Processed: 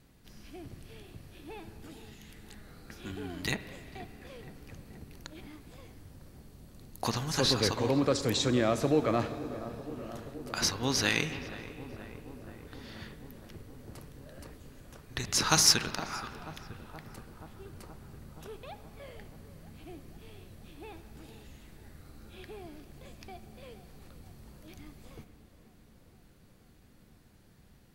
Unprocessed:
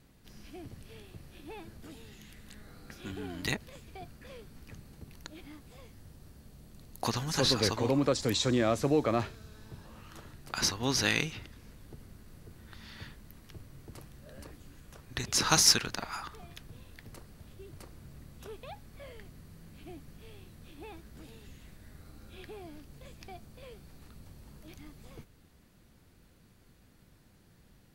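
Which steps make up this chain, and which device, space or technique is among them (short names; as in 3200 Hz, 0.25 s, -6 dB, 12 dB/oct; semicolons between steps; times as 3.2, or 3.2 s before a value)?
dub delay into a spring reverb (darkening echo 0.476 s, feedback 81%, low-pass 1800 Hz, level -15 dB; spring tank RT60 2.3 s, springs 32/59 ms, chirp 65 ms, DRR 11.5 dB)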